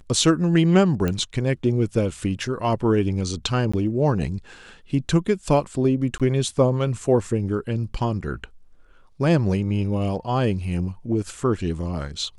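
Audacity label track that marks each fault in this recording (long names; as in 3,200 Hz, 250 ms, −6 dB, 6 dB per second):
1.080000	1.080000	click −12 dBFS
3.720000	3.730000	drop-out 15 ms
6.180000	6.200000	drop-out 17 ms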